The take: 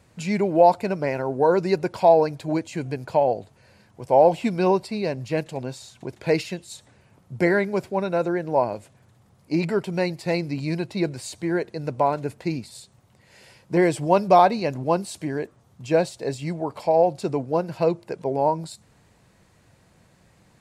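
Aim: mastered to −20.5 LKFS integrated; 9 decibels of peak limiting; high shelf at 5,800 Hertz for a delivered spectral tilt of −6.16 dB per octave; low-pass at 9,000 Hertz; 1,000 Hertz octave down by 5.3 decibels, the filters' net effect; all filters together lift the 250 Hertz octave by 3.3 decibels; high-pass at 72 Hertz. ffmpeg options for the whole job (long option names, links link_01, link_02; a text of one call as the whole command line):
ffmpeg -i in.wav -af "highpass=72,lowpass=9000,equalizer=frequency=250:width_type=o:gain=6,equalizer=frequency=1000:width_type=o:gain=-8.5,highshelf=frequency=5800:gain=-6.5,volume=5.5dB,alimiter=limit=-9dB:level=0:latency=1" out.wav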